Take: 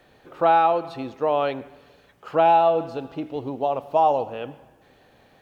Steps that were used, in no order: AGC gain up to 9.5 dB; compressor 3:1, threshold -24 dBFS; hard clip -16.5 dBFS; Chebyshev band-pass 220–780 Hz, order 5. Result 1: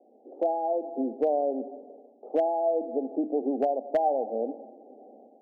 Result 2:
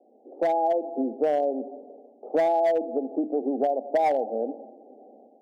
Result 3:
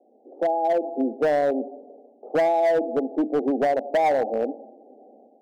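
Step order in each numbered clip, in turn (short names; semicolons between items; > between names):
AGC > compressor > Chebyshev band-pass > hard clip; Chebyshev band-pass > hard clip > AGC > compressor; compressor > AGC > Chebyshev band-pass > hard clip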